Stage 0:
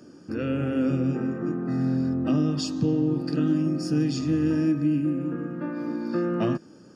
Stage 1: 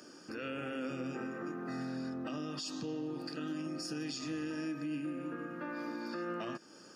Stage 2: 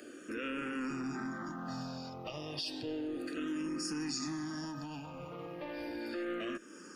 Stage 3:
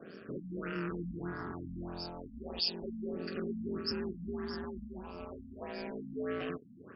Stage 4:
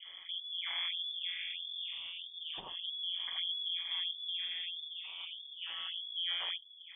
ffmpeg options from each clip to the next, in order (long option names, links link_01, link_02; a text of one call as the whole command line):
ffmpeg -i in.wav -filter_complex "[0:a]asplit=2[link_01][link_02];[link_02]acompressor=threshold=-35dB:ratio=6,volume=2.5dB[link_03];[link_01][link_03]amix=inputs=2:normalize=0,highpass=frequency=1300:poles=1,alimiter=level_in=5dB:limit=-24dB:level=0:latency=1:release=65,volume=-5dB,volume=-2dB" out.wav
ffmpeg -i in.wav -filter_complex "[0:a]acrossover=split=2400[link_01][link_02];[link_01]asoftclip=type=tanh:threshold=-39dB[link_03];[link_03][link_02]amix=inputs=2:normalize=0,asplit=2[link_04][link_05];[link_05]afreqshift=-0.32[link_06];[link_04][link_06]amix=inputs=2:normalize=1,volume=6.5dB" out.wav
ffmpeg -i in.wav -af "aeval=exprs='val(0)*sin(2*PI*87*n/s)':channel_layout=same,aexciter=amount=11.6:drive=6:freq=5600,afftfilt=real='re*lt(b*sr/1024,270*pow(5500/270,0.5+0.5*sin(2*PI*1.6*pts/sr)))':imag='im*lt(b*sr/1024,270*pow(5500/270,0.5+0.5*sin(2*PI*1.6*pts/sr)))':win_size=1024:overlap=0.75,volume=3.5dB" out.wav
ffmpeg -i in.wav -af "lowpass=frequency=3100:width_type=q:width=0.5098,lowpass=frequency=3100:width_type=q:width=0.6013,lowpass=frequency=3100:width_type=q:width=0.9,lowpass=frequency=3100:width_type=q:width=2.563,afreqshift=-3600" out.wav